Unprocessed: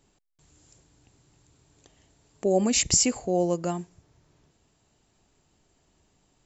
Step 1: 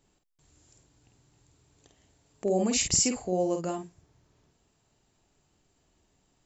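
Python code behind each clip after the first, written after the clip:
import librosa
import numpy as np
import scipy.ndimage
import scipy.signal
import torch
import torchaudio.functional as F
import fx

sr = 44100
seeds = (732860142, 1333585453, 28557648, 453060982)

y = fx.doubler(x, sr, ms=49.0, db=-5.5)
y = y * librosa.db_to_amplitude(-4.0)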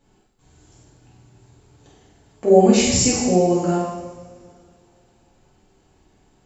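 y = fx.high_shelf(x, sr, hz=2700.0, db=-8.0)
y = fx.rev_double_slope(y, sr, seeds[0], early_s=0.97, late_s=2.8, knee_db=-19, drr_db=-7.5)
y = y * librosa.db_to_amplitude(4.5)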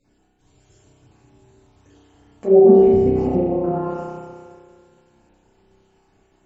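y = fx.spec_dropout(x, sr, seeds[1], share_pct=30)
y = fx.env_lowpass_down(y, sr, base_hz=720.0, full_db=-15.0)
y = fx.rev_spring(y, sr, rt60_s=1.9, pass_ms=(31,), chirp_ms=45, drr_db=-3.0)
y = y * librosa.db_to_amplitude(-3.5)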